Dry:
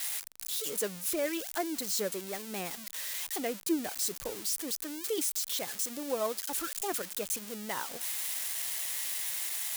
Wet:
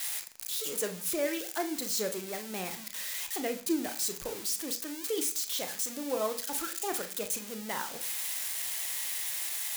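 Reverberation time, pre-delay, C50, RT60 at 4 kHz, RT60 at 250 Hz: 0.40 s, 28 ms, 13.5 dB, 0.50 s, 0.55 s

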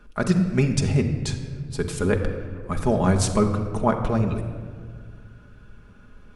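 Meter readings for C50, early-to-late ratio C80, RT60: 8.0 dB, 9.0 dB, 1.8 s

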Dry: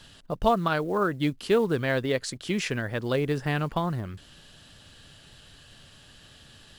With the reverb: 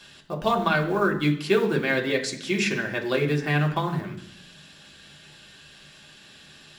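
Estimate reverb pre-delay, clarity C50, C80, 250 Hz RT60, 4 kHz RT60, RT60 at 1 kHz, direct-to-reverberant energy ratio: 3 ms, 11.0 dB, 14.0 dB, 0.95 s, 0.80 s, 0.65 s, −0.5 dB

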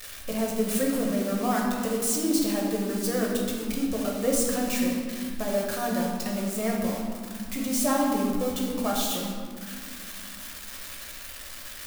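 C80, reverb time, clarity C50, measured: 3.0 dB, 2.2 s, 1.5 dB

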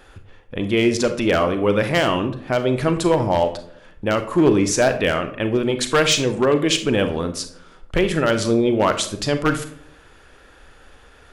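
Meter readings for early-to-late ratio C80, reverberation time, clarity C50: 15.0 dB, 0.65 s, 11.0 dB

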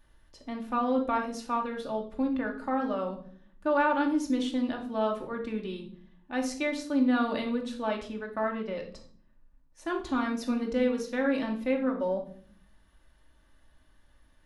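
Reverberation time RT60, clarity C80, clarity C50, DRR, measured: 0.50 s, 13.5 dB, 9.0 dB, 1.0 dB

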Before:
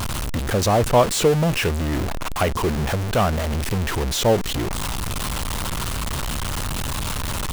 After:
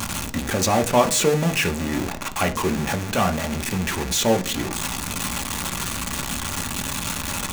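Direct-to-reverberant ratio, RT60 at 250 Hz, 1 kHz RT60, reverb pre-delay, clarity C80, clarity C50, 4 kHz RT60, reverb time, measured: 5.0 dB, 0.60 s, 0.40 s, 3 ms, 20.5 dB, 16.5 dB, 0.50 s, 0.45 s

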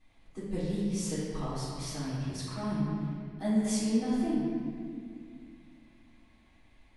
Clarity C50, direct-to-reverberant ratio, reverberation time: −3.0 dB, −11.0 dB, 2.2 s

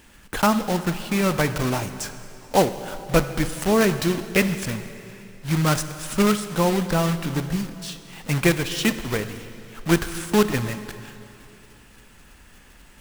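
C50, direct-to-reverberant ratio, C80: 11.5 dB, 10.5 dB, 12.0 dB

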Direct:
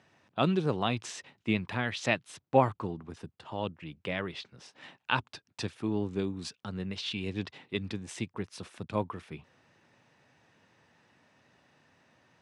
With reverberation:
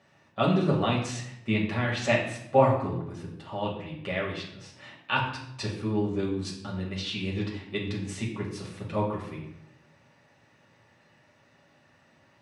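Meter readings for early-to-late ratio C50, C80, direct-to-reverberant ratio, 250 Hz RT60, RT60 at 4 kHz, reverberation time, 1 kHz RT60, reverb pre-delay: 5.5 dB, 8.5 dB, −5.0 dB, 0.95 s, 0.60 s, 0.80 s, 0.75 s, 5 ms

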